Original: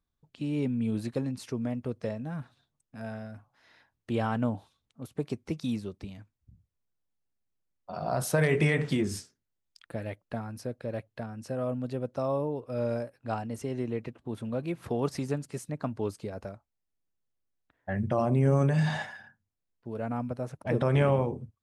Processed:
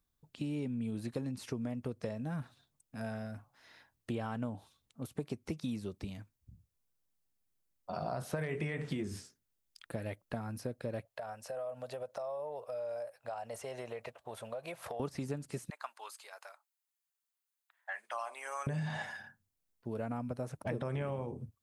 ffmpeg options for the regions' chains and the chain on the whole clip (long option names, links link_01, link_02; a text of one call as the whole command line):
ffmpeg -i in.wav -filter_complex "[0:a]asettb=1/sr,asplit=3[link_01][link_02][link_03];[link_01]atrim=end=11.054[link_04];[link_02]atrim=start=11.05:end=15,asetpts=PTS-STARTPTS,afade=type=in:duration=0.004:curve=qsin,afade=type=out:start_time=3.946:duration=0.004:curve=qsin,lowshelf=frequency=420:width_type=q:width=3:gain=-13,acompressor=threshold=-37dB:ratio=6:attack=3.2:release=140:knee=1:detection=peak[link_05];[link_03]atrim=start=14.996[link_06];[link_04][link_05]acrossfade=duration=0.004:curve1=hsin:curve2=qsin[link_07];[link_07][link_06]acrossfade=duration=0.004:curve1=qsin:curve2=hsin,asettb=1/sr,asplit=3[link_08][link_09][link_10];[link_08]atrim=end=15.704[link_11];[link_09]atrim=start=15.7:end=18.67,asetpts=PTS-STARTPTS,afade=type=in:duration=0.004:curve=qsin,afade=type=out:start_time=2.966:duration=0.004:curve=qsin,highpass=frequency=900:width=0.5412,highpass=frequency=900:width=1.3066,bandreject=frequency=5600:width=13[link_12];[link_10]atrim=start=18.666[link_13];[link_11][link_12]acrossfade=duration=0.004:curve1=hsin:curve2=qsin[link_14];[link_14][link_13]acrossfade=duration=0.004:curve1=qsin:curve2=hsin,acrossover=split=3400[link_15][link_16];[link_16]acompressor=threshold=-52dB:ratio=4:attack=1:release=60[link_17];[link_15][link_17]amix=inputs=2:normalize=0,highshelf=frequency=6800:gain=9,acompressor=threshold=-34dB:ratio=6" out.wav